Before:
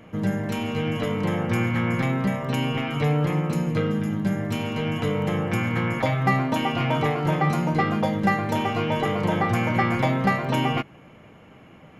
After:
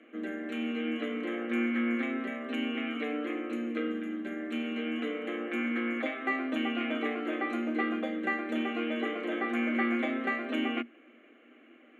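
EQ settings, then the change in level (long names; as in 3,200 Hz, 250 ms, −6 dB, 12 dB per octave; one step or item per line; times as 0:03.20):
Chebyshev high-pass with heavy ripple 230 Hz, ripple 6 dB
low-pass filter 6,000 Hz 12 dB per octave
phaser with its sweep stopped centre 2,200 Hz, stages 4
0.0 dB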